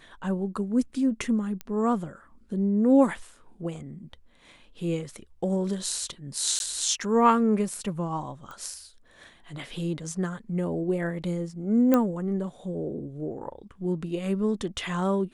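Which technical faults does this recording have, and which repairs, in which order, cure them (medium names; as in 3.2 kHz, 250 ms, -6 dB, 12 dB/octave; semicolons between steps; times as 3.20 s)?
1.61 s: pop -20 dBFS
6.59–6.60 s: dropout 11 ms
8.51 s: pop -28 dBFS
11.94 s: pop -10 dBFS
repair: de-click; interpolate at 6.59 s, 11 ms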